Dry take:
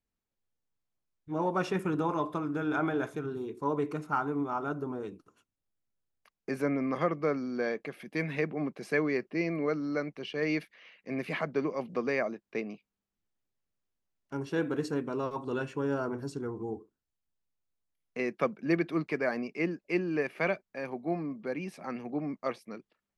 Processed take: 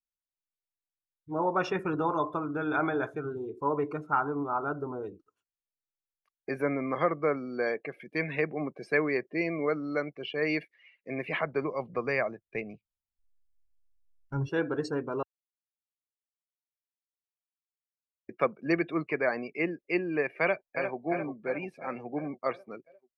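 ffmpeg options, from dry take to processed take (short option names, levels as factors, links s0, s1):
-filter_complex "[0:a]asettb=1/sr,asplit=3[s0][s1][s2];[s0]atrim=end=11.114[s3];[s1]atrim=start=11.11:end=14.49,asetpts=PTS-STARTPTS,afade=t=in:d=0.004:c=qsin,afade=t=out:st=3.376:d=0.004:c=qsin,asubboost=boost=10.5:cutoff=130[s4];[s2]atrim=start=14.486[s5];[s3][s4]acrossfade=d=0.004:c1=hsin:c2=qsin[s6];[s6][s5]acrossfade=d=0.004:c1=qsin:c2=hsin,asplit=2[s7][s8];[s8]afade=t=in:st=20.41:d=0.01,afade=t=out:st=20.98:d=0.01,aecho=0:1:350|700|1050|1400|1750|2100|2450|2800|3150:0.446684|0.290344|0.188724|0.12267|0.0797358|0.0518283|0.0336884|0.0218974|0.0142333[s9];[s7][s9]amix=inputs=2:normalize=0,asplit=3[s10][s11][s12];[s10]atrim=end=15.23,asetpts=PTS-STARTPTS,afade=t=out:st=15.226:d=0.004:c=hsin[s13];[s11]atrim=start=15.23:end=18.29,asetpts=PTS-STARTPTS,volume=0[s14];[s12]atrim=start=18.29,asetpts=PTS-STARTPTS,afade=t=in:d=0.004:c=hsin[s15];[s13][s14][s15]concat=n=3:v=0:a=1,afftdn=nr=20:nf=-47,equalizer=f=210:t=o:w=1.1:g=-8.5,volume=1.5"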